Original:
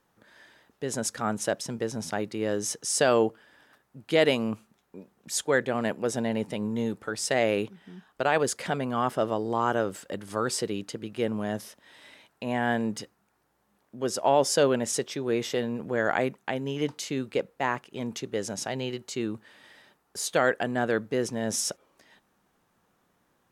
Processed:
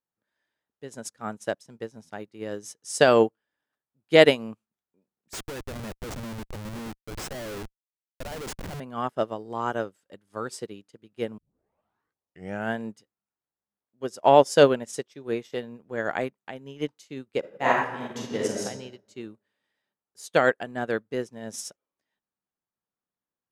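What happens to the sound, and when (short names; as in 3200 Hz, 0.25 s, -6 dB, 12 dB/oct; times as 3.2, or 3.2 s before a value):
5.33–8.8 Schmitt trigger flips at -30.5 dBFS
11.38 tape start 1.39 s
17.39–18.65 reverb throw, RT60 1.6 s, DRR -5 dB
whole clip: upward expander 2.5:1, over -41 dBFS; gain +8 dB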